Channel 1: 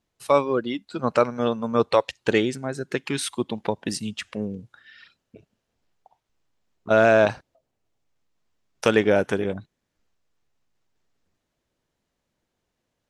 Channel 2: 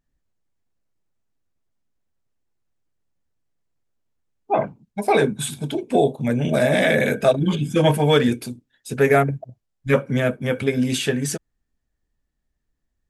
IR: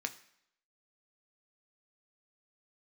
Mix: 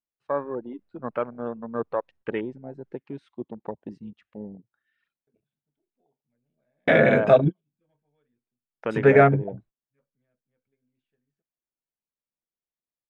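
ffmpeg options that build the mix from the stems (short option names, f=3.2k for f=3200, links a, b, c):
-filter_complex "[0:a]afwtdn=0.0447,equalizer=f=85:w=2.6:g=-10,volume=-8dB,asplit=2[a][b];[1:a]adelay=50,volume=1dB,asplit=3[c][d][e];[c]atrim=end=2.93,asetpts=PTS-STARTPTS,afade=t=out:st=2.926:d=0.004:c=hsin[f];[d]atrim=start=2.93:end=5.27,asetpts=PTS-STARTPTS,volume=0[g];[e]atrim=start=5.27,asetpts=PTS-STARTPTS,afade=t=in:d=0.004:c=hsin[h];[f][g][h]concat=n=3:v=0:a=1[i];[b]apad=whole_len=579518[j];[i][j]sidechaingate=range=-58dB:threshold=-53dB:ratio=16:detection=peak[k];[a][k]amix=inputs=2:normalize=0,lowpass=2.3k"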